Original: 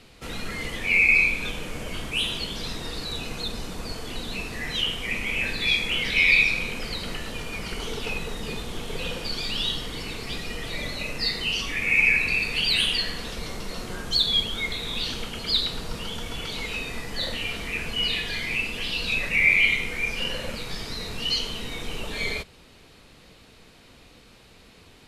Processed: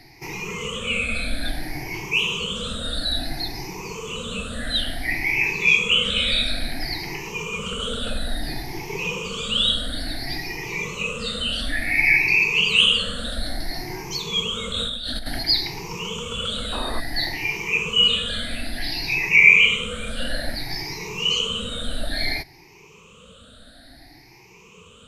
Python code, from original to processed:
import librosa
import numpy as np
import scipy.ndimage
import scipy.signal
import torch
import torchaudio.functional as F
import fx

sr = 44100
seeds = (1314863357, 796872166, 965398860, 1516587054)

y = fx.spec_ripple(x, sr, per_octave=0.76, drift_hz=0.58, depth_db=23)
y = fx.over_compress(y, sr, threshold_db=-26.0, ratio=-1.0, at=(14.72, 15.43))
y = fx.spec_paint(y, sr, seeds[0], shape='noise', start_s=16.72, length_s=0.28, low_hz=200.0, high_hz=1300.0, level_db=-30.0)
y = F.gain(torch.from_numpy(y), -1.5).numpy()